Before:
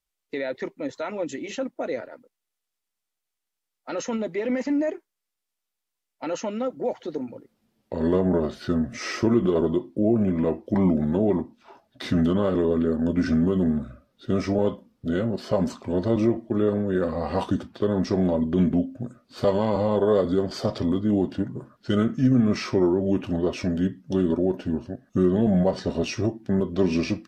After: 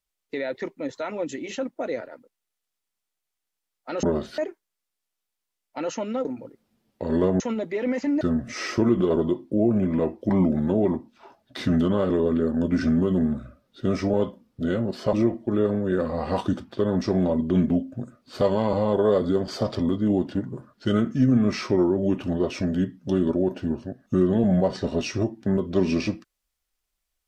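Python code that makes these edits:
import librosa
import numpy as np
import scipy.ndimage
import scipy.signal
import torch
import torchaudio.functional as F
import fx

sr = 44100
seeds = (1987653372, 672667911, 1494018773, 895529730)

y = fx.edit(x, sr, fx.swap(start_s=4.03, length_s=0.81, other_s=8.31, other_length_s=0.35),
    fx.cut(start_s=6.71, length_s=0.45),
    fx.cut(start_s=15.58, length_s=0.58), tone=tone)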